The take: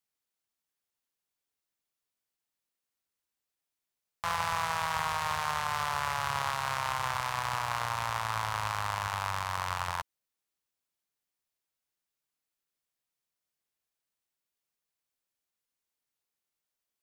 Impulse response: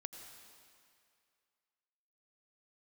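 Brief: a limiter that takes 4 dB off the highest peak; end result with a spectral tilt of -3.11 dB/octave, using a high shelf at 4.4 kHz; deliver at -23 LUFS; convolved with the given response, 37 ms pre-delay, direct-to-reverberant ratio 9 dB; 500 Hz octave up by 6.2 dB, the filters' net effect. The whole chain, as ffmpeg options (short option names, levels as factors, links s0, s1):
-filter_complex "[0:a]equalizer=f=500:t=o:g=8.5,highshelf=f=4400:g=-4,alimiter=limit=0.112:level=0:latency=1,asplit=2[s0][s1];[1:a]atrim=start_sample=2205,adelay=37[s2];[s1][s2]afir=irnorm=-1:irlink=0,volume=0.531[s3];[s0][s3]amix=inputs=2:normalize=0,volume=2.82"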